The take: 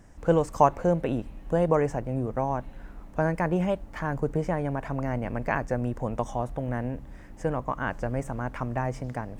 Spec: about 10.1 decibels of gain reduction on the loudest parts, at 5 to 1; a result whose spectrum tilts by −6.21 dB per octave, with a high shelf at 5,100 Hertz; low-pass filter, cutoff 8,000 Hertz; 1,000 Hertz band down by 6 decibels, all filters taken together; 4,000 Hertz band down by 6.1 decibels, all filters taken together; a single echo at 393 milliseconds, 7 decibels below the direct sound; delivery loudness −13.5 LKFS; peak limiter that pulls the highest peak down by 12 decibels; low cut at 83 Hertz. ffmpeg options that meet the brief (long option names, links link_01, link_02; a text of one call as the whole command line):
ffmpeg -i in.wav -af "highpass=83,lowpass=8000,equalizer=frequency=1000:width_type=o:gain=-7.5,equalizer=frequency=4000:width_type=o:gain=-5,highshelf=frequency=5100:gain=-8.5,acompressor=threshold=-29dB:ratio=5,alimiter=level_in=4.5dB:limit=-24dB:level=0:latency=1,volume=-4.5dB,aecho=1:1:393:0.447,volume=24.5dB" out.wav